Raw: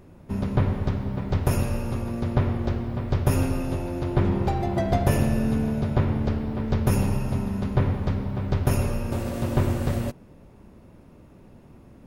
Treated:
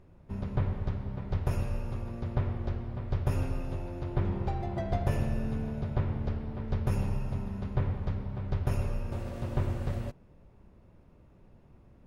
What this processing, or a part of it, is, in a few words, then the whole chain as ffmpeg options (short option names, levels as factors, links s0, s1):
low shelf boost with a cut just above: -af "lowshelf=f=68:g=7.5,equalizer=f=260:t=o:w=0.76:g=-4.5,highshelf=f=7500:g=-12,volume=0.355"